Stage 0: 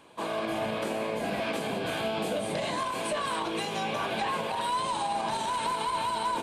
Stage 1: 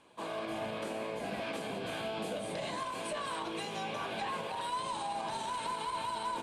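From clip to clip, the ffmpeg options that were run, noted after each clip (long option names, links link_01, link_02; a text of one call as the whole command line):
ffmpeg -i in.wav -af "lowpass=frequency=12000:width=0.5412,lowpass=frequency=12000:width=1.3066,bandreject=frequency=74.53:width_type=h:width=4,bandreject=frequency=149.06:width_type=h:width=4,bandreject=frequency=223.59:width_type=h:width=4,bandreject=frequency=298.12:width_type=h:width=4,bandreject=frequency=372.65:width_type=h:width=4,bandreject=frequency=447.18:width_type=h:width=4,bandreject=frequency=521.71:width_type=h:width=4,bandreject=frequency=596.24:width_type=h:width=4,bandreject=frequency=670.77:width_type=h:width=4,bandreject=frequency=745.3:width_type=h:width=4,bandreject=frequency=819.83:width_type=h:width=4,bandreject=frequency=894.36:width_type=h:width=4,bandreject=frequency=968.89:width_type=h:width=4,bandreject=frequency=1043.42:width_type=h:width=4,bandreject=frequency=1117.95:width_type=h:width=4,bandreject=frequency=1192.48:width_type=h:width=4,bandreject=frequency=1267.01:width_type=h:width=4,bandreject=frequency=1341.54:width_type=h:width=4,bandreject=frequency=1416.07:width_type=h:width=4,bandreject=frequency=1490.6:width_type=h:width=4,bandreject=frequency=1565.13:width_type=h:width=4,bandreject=frequency=1639.66:width_type=h:width=4,bandreject=frequency=1714.19:width_type=h:width=4,bandreject=frequency=1788.72:width_type=h:width=4,bandreject=frequency=1863.25:width_type=h:width=4,bandreject=frequency=1937.78:width_type=h:width=4,bandreject=frequency=2012.31:width_type=h:width=4,bandreject=frequency=2086.84:width_type=h:width=4,bandreject=frequency=2161.37:width_type=h:width=4,bandreject=frequency=2235.9:width_type=h:width=4,bandreject=frequency=2310.43:width_type=h:width=4,bandreject=frequency=2384.96:width_type=h:width=4,volume=-6.5dB" out.wav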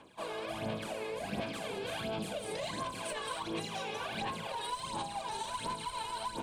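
ffmpeg -i in.wav -filter_complex "[0:a]aphaser=in_gain=1:out_gain=1:delay=2.4:decay=0.64:speed=1.4:type=sinusoidal,acrossover=split=180|3000[link_01][link_02][link_03];[link_02]acompressor=threshold=-36dB:ratio=6[link_04];[link_01][link_04][link_03]amix=inputs=3:normalize=0" out.wav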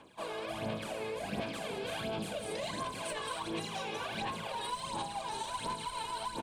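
ffmpeg -i in.wav -af "aecho=1:1:378:0.211" out.wav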